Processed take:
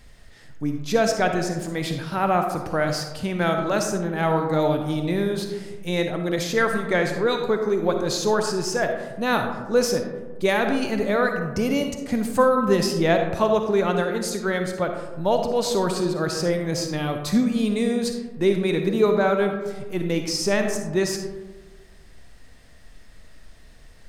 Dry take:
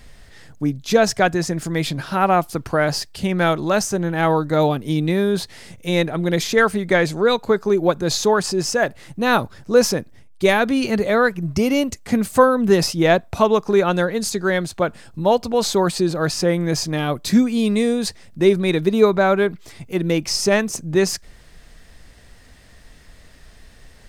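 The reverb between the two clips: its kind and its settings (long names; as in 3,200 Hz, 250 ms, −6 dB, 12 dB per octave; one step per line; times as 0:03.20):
comb and all-pass reverb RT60 1.3 s, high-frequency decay 0.35×, pre-delay 15 ms, DRR 4.5 dB
level −5.5 dB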